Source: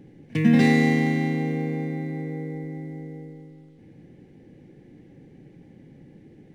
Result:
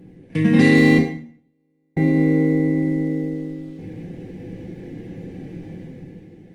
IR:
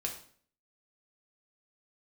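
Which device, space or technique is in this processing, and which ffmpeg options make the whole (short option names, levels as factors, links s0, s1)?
speakerphone in a meeting room: -filter_complex "[0:a]asettb=1/sr,asplit=3[s0][s1][s2];[s0]atrim=end=0.984[s3];[s1]atrim=start=0.98:end=1.97,asetpts=PTS-STARTPTS,afade=t=in:d=0.004:c=qsin,afade=t=out:st=0.986:d=0.004:c=qsin,agate=range=0.00251:threshold=0.141:ratio=16:detection=peak[s4];[s2]atrim=start=1.966[s5];[s3][s4]acrossfade=d=0.004:c1=hsin:c2=qsin[s6];[s6][s5]acrossfade=d=0.004:c1=qsin:c2=hsin[s7];[1:a]atrim=start_sample=2205[s8];[s7][s8]afir=irnorm=-1:irlink=0,dynaudnorm=f=110:g=13:m=3.16,volume=1.33" -ar 48000 -c:a libopus -b:a 32k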